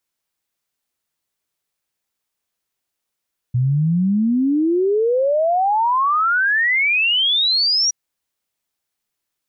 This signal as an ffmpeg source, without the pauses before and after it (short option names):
-f lavfi -i "aevalsrc='0.2*clip(min(t,4.37-t)/0.01,0,1)*sin(2*PI*120*4.37/log(5800/120)*(exp(log(5800/120)*t/4.37)-1))':d=4.37:s=44100"